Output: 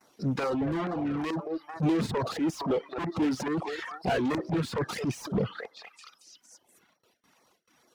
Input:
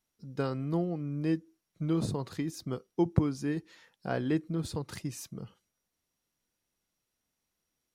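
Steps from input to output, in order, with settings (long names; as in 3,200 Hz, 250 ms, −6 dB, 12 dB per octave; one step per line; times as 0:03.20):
gain on one half-wave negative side −3 dB
dynamic equaliser 600 Hz, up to −3 dB, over −42 dBFS, Q 1.4
on a send: echo through a band-pass that steps 220 ms, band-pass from 590 Hz, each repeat 0.7 octaves, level −10 dB
on the sum: mid-hump overdrive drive 46 dB, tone 1,000 Hz, clips at −12.5 dBFS
reverb reduction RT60 1.4 s
transient designer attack +9 dB, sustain −9 dB
auto-filter notch saw down 2.3 Hz 300–3,500 Hz
transient designer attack −11 dB, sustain +6 dB
high-pass filter 95 Hz 6 dB per octave
noise gate with hold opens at −50 dBFS
highs frequency-modulated by the lows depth 0.12 ms
level −5 dB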